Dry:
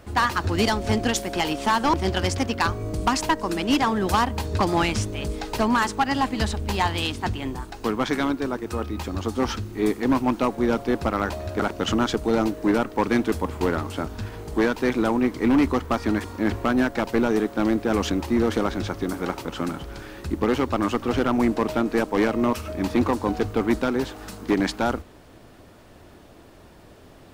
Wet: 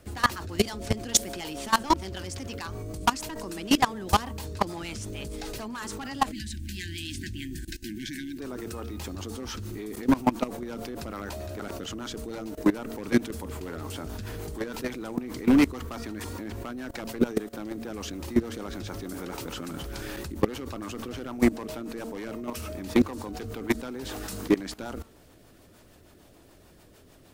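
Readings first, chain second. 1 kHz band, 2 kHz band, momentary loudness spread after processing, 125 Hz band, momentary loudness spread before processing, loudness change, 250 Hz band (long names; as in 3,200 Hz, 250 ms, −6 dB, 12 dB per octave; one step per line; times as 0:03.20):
−7.0 dB, −7.5 dB, 12 LU, −7.0 dB, 8 LU, −6.5 dB, −6.0 dB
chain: hum removal 226.7 Hz, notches 6
rotating-speaker cabinet horn 6.7 Hz
high-shelf EQ 5,900 Hz +11 dB
in parallel at −1 dB: downward compressor 10 to 1, threshold −34 dBFS, peak gain reduction 17.5 dB
on the sum: time-frequency box erased 0:06.32–0:08.39, 380–1,500 Hz
output level in coarse steps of 19 dB
level +2 dB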